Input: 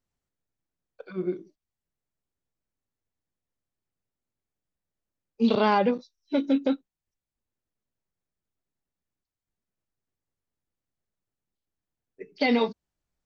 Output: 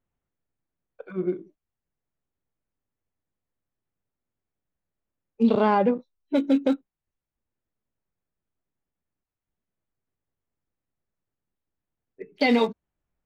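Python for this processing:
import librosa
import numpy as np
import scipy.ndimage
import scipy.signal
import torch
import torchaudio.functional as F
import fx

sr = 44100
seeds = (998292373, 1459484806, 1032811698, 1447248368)

y = fx.wiener(x, sr, points=9)
y = fx.lowpass(y, sr, hz=1300.0, slope=6, at=(5.42, 6.34), fade=0.02)
y = y * librosa.db_to_amplitude(2.5)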